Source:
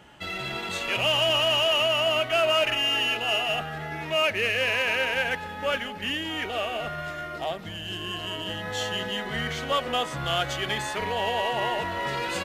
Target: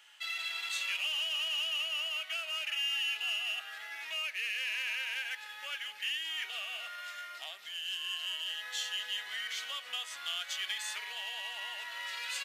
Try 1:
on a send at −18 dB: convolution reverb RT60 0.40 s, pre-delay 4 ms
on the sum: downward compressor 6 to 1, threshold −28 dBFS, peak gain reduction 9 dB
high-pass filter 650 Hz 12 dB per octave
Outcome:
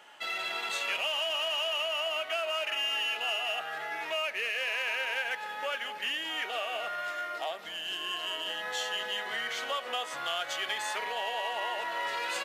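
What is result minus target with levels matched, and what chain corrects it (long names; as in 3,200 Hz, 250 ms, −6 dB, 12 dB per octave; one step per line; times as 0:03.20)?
500 Hz band +16.5 dB
on a send at −18 dB: convolution reverb RT60 0.40 s, pre-delay 4 ms
on the sum: downward compressor 6 to 1, threshold −28 dBFS, peak gain reduction 9 dB
high-pass filter 2,300 Hz 12 dB per octave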